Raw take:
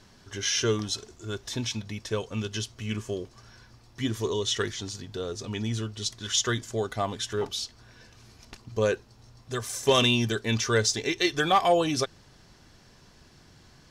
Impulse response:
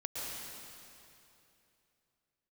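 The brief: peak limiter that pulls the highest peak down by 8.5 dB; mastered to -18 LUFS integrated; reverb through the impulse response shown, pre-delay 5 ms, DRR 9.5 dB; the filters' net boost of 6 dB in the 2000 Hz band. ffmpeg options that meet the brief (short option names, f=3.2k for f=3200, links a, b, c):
-filter_complex "[0:a]equalizer=f=2k:t=o:g=8,alimiter=limit=-16.5dB:level=0:latency=1,asplit=2[a][b];[1:a]atrim=start_sample=2205,adelay=5[c];[b][c]afir=irnorm=-1:irlink=0,volume=-12dB[d];[a][d]amix=inputs=2:normalize=0,volume=10.5dB"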